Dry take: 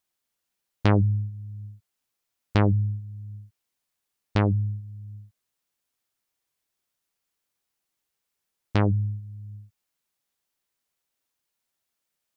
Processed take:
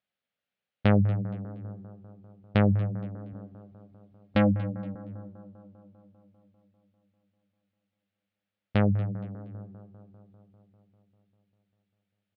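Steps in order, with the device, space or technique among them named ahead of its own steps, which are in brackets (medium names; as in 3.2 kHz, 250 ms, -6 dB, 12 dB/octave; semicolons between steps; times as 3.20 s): frequency-shifting delay pedal into a guitar cabinet (frequency-shifting echo 235 ms, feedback 34%, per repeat +90 Hz, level -19 dB; cabinet simulation 88–3500 Hz, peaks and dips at 200 Hz +4 dB, 340 Hz -9 dB, 560 Hz +5 dB, 1 kHz -9 dB); 3.33–4.95 s: comb 3.7 ms, depth 96%; bucket-brigade echo 198 ms, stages 2048, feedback 72%, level -16 dB; trim -1 dB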